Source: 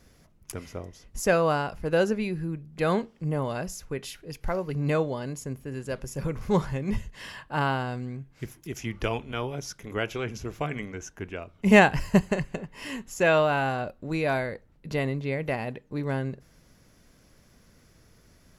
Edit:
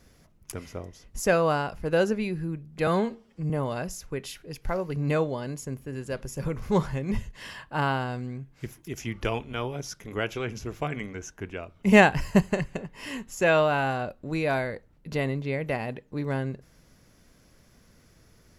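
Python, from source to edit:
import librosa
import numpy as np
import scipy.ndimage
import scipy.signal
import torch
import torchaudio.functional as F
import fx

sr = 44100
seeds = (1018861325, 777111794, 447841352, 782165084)

y = fx.edit(x, sr, fx.stretch_span(start_s=2.87, length_s=0.42, factor=1.5), tone=tone)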